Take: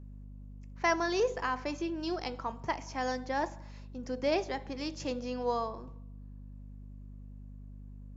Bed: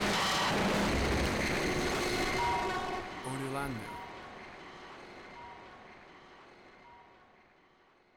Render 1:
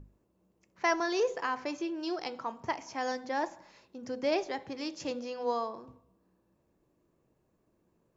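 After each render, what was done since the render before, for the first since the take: notches 50/100/150/200/250 Hz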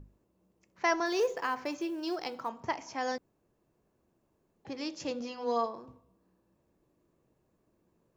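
1.06–2.49 short-mantissa float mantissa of 4-bit; 3.18–4.65 room tone; 5.19–5.66 doubler 13 ms -4 dB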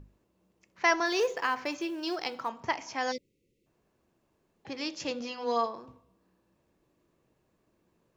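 3.12–3.66 spectral delete 580–1900 Hz; bell 2800 Hz +6.5 dB 2.5 oct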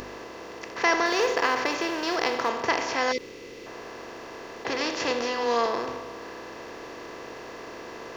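per-bin compression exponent 0.4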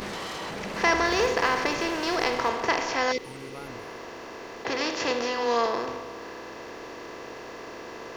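add bed -6 dB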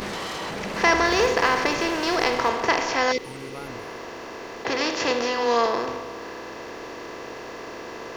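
gain +3.5 dB

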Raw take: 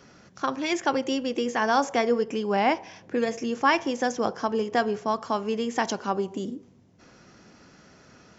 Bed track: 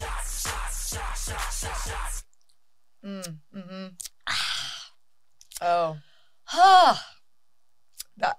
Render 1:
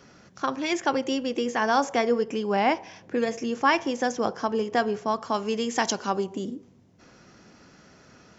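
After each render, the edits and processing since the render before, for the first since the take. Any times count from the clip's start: 5.34–6.24 high shelf 3500 Hz +8.5 dB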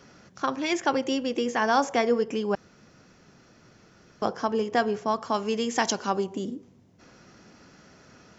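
2.55–4.22 room tone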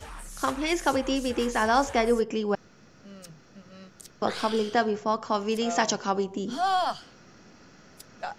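add bed track -10 dB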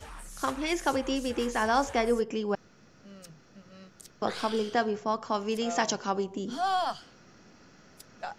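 gain -3 dB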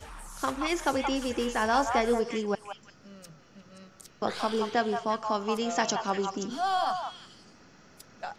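delay with a stepping band-pass 0.175 s, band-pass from 1000 Hz, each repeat 1.4 oct, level -3 dB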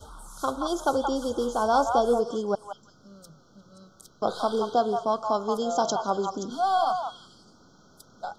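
Chebyshev band-stop 1500–3200 Hz, order 5; dynamic EQ 630 Hz, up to +7 dB, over -43 dBFS, Q 1.4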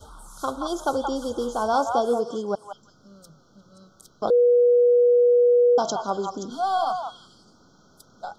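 1.74–2.71 HPF 87 Hz; 4.3–5.78 bleep 485 Hz -13.5 dBFS

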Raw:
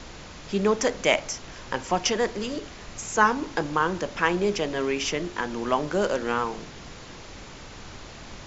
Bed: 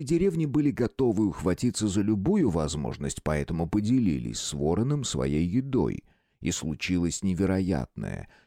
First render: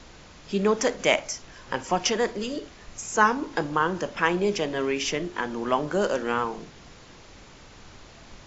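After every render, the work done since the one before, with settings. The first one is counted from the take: noise print and reduce 6 dB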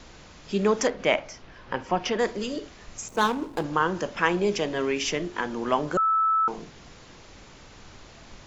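0.87–2.19 air absorption 190 m; 3.08–3.64 median filter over 25 samples; 5.97–6.48 bleep 1310 Hz -19 dBFS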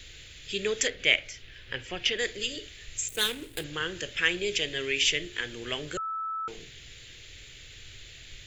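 EQ curve 120 Hz 0 dB, 200 Hz -16 dB, 430 Hz -6 dB, 980 Hz -23 dB, 1800 Hz +2 dB, 3500 Hz +9 dB, 5600 Hz -3 dB, 8700 Hz +14 dB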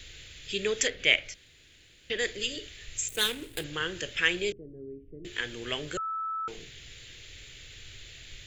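1.34–2.1 room tone; 4.52–5.25 ladder low-pass 420 Hz, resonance 25%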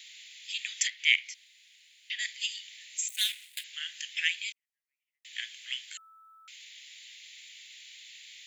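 elliptic high-pass 2000 Hz, stop band 80 dB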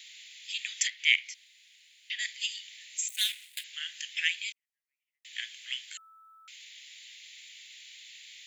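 nothing audible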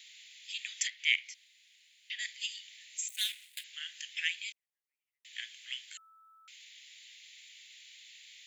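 gain -4.5 dB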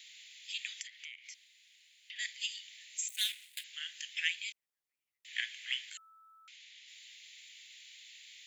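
0.81–2.16 compressor 12:1, threshold -43 dBFS; 5.28–5.9 bell 1900 Hz +8 dB 1.3 oct; 6.48–6.88 air absorption 60 m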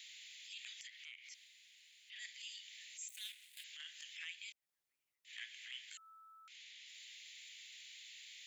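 transient shaper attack -12 dB, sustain +1 dB; compressor 2.5:1, threshold -50 dBFS, peak gain reduction 12.5 dB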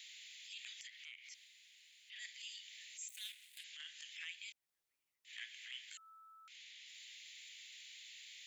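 3.58–4.12 LPF 10000 Hz

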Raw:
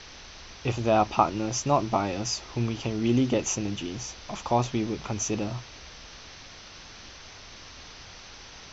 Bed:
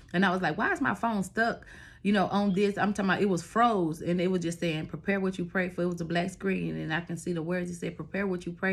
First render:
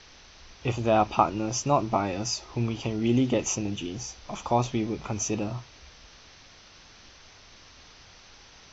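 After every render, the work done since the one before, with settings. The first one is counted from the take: noise print and reduce 6 dB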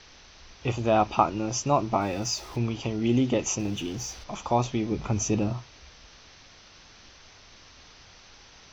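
2.01–2.58 zero-crossing step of -44 dBFS; 3.59–4.24 G.711 law mismatch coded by mu; 4.91–5.53 low shelf 290 Hz +7.5 dB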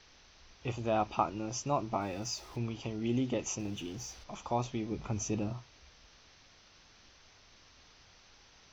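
gain -8.5 dB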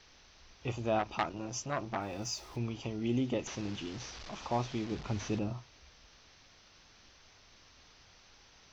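0.99–2.19 core saturation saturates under 1700 Hz; 3.47–5.39 delta modulation 32 kbps, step -40.5 dBFS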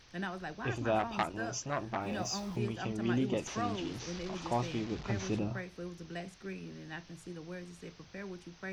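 add bed -13.5 dB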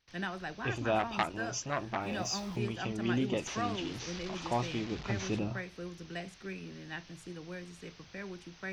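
gate with hold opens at -49 dBFS; bell 2800 Hz +4 dB 2 oct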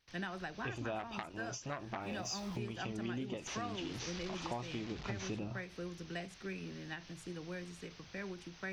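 compressor 6:1, threshold -37 dBFS, peak gain reduction 12.5 dB; ending taper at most 150 dB/s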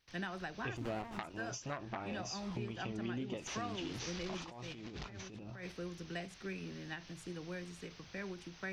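0.77–1.19 running maximum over 17 samples; 1.77–3.3 air absorption 66 m; 4.41–5.72 negative-ratio compressor -48 dBFS

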